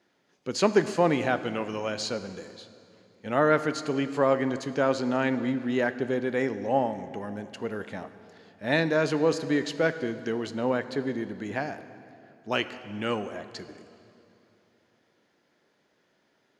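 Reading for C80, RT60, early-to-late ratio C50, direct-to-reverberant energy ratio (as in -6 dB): 13.0 dB, 2.8 s, 12.5 dB, 11.5 dB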